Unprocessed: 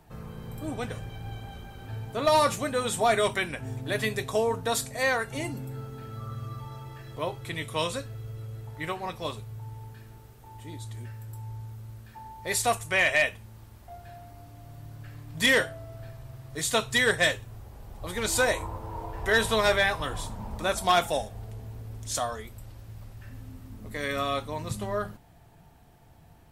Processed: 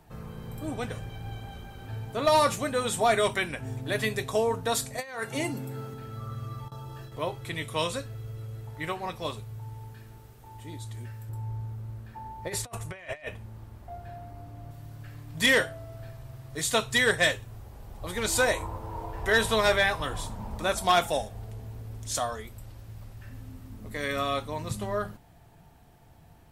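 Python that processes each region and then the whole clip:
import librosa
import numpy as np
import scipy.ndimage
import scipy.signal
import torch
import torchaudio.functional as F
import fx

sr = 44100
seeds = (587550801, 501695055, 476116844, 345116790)

y = fx.chain(x, sr, fx.highpass(hz=140.0, slope=12),
    fx.over_compress(threshold_db=-31.0, ratio=-0.5), at=(4.98, 5.94))
y = fx.chain(y, sr, fx.gate_hold(open_db=-33.0, close_db=-37.0, hold_ms=71.0, range_db=-21, attack_ms=1.4, release_ms=100.0),
    fx.peak_eq(hz=2100.0, db=-14.5, octaves=0.3),
    fx.env_flatten(amount_pct=50), at=(6.68, 7.12))
y = fx.chain(y, sr, fx.high_shelf(hz=2100.0, db=-10.0),
    fx.over_compress(threshold_db=-34.0, ratio=-0.5), at=(11.29, 14.71))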